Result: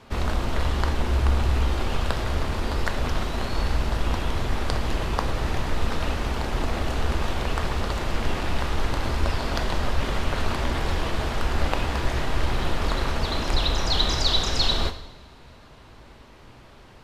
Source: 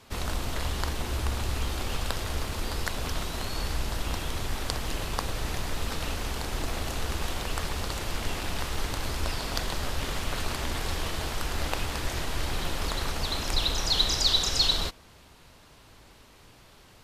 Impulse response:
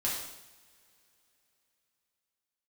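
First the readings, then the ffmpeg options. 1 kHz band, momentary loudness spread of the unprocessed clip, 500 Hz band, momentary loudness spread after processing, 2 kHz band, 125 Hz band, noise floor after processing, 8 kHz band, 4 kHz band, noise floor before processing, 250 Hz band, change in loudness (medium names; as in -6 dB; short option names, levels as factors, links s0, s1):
+6.0 dB, 9 LU, +6.5 dB, 6 LU, +4.0 dB, +7.0 dB, -48 dBFS, -4.0 dB, +0.5 dB, -54 dBFS, +7.0 dB, +3.5 dB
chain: -filter_complex "[0:a]lowpass=f=2000:p=1,asplit=2[s0][s1];[1:a]atrim=start_sample=2205[s2];[s1][s2]afir=irnorm=-1:irlink=0,volume=0.266[s3];[s0][s3]amix=inputs=2:normalize=0,volume=1.68"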